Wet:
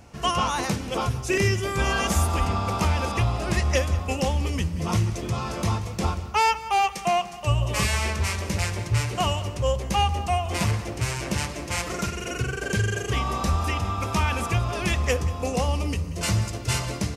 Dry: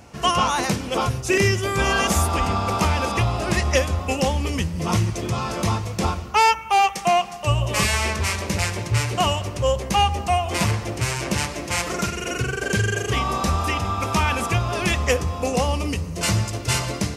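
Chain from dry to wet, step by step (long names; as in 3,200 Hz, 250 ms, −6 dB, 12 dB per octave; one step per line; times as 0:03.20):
low-shelf EQ 83 Hz +7.5 dB
on a send: single-tap delay 184 ms −17.5 dB
on the sum: level −4.5 dB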